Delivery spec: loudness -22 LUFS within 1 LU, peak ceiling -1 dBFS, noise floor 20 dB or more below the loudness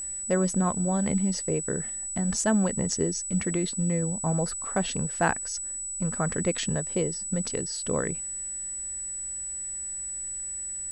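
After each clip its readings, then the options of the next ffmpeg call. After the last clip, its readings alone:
steady tone 7900 Hz; tone level -32 dBFS; loudness -28.0 LUFS; peak -10.0 dBFS; loudness target -22.0 LUFS
-> -af "bandreject=f=7.9k:w=30"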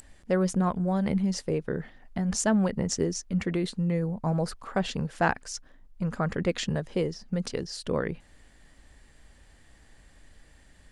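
steady tone none; loudness -29.0 LUFS; peak -10.5 dBFS; loudness target -22.0 LUFS
-> -af "volume=7dB"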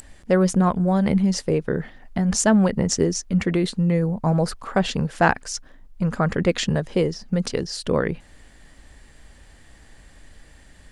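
loudness -22.0 LUFS; peak -3.5 dBFS; noise floor -49 dBFS

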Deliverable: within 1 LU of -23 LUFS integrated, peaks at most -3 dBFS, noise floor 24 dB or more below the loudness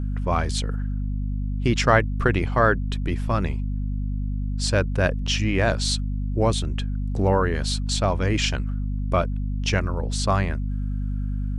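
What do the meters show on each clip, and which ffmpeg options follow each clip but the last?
hum 50 Hz; harmonics up to 250 Hz; hum level -23 dBFS; loudness -24.0 LUFS; peak -3.0 dBFS; loudness target -23.0 LUFS
-> -af "bandreject=f=50:t=h:w=6,bandreject=f=100:t=h:w=6,bandreject=f=150:t=h:w=6,bandreject=f=200:t=h:w=6,bandreject=f=250:t=h:w=6"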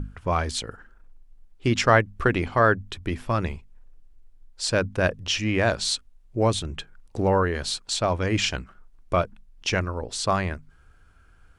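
hum none; loudness -25.0 LUFS; peak -3.5 dBFS; loudness target -23.0 LUFS
-> -af "volume=2dB,alimiter=limit=-3dB:level=0:latency=1"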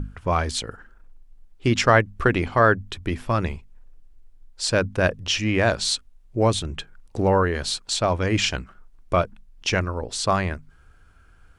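loudness -23.0 LUFS; peak -3.0 dBFS; noise floor -52 dBFS

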